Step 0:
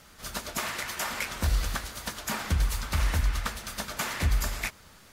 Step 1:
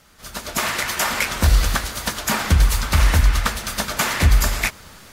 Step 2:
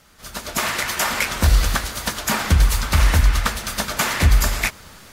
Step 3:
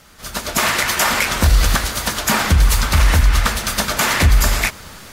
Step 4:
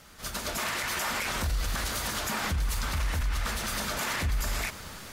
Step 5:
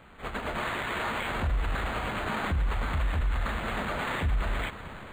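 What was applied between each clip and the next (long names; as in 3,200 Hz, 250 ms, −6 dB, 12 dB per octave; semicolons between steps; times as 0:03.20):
automatic gain control gain up to 11 dB
no processing that can be heard
brickwall limiter −11 dBFS, peak gain reduction 5 dB; level +6 dB
brickwall limiter −16.5 dBFS, peak gain reduction 11.5 dB; level −5.5 dB
linearly interpolated sample-rate reduction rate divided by 8×; level +1.5 dB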